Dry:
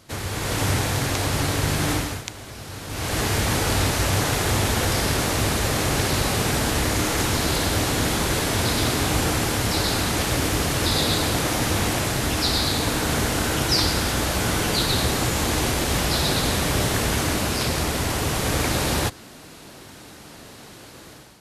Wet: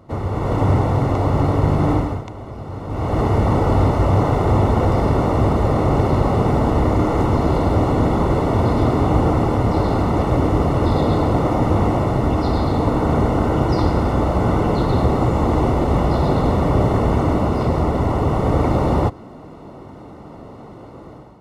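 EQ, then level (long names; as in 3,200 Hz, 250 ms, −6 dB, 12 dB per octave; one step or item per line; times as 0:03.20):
Savitzky-Golay smoothing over 65 samples
+7.5 dB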